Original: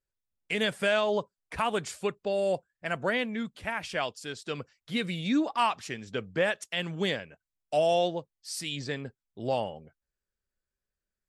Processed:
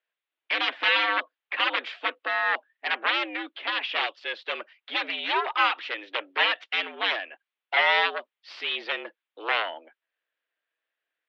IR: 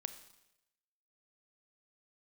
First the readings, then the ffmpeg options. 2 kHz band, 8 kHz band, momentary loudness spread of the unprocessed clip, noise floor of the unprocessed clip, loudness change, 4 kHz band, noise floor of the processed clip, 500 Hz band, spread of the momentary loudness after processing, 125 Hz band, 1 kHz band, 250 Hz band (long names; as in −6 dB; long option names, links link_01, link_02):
+9.0 dB, below −15 dB, 12 LU, below −85 dBFS, +4.5 dB, +8.0 dB, below −85 dBFS, −6.5 dB, 12 LU, below −40 dB, +4.5 dB, −11.0 dB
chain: -af "aeval=exprs='0.2*(cos(1*acos(clip(val(0)/0.2,-1,1)))-cos(1*PI/2))+0.0282*(cos(3*acos(clip(val(0)/0.2,-1,1)))-cos(3*PI/2))+0.0224*(cos(6*acos(clip(val(0)/0.2,-1,1)))-cos(6*PI/2))+0.0794*(cos(7*acos(clip(val(0)/0.2,-1,1)))-cos(7*PI/2))':channel_layout=same,tiltshelf=frequency=770:gain=-7.5,highpass=frequency=230:width_type=q:width=0.5412,highpass=frequency=230:width_type=q:width=1.307,lowpass=frequency=3300:width_type=q:width=0.5176,lowpass=frequency=3300:width_type=q:width=0.7071,lowpass=frequency=3300:width_type=q:width=1.932,afreqshift=94"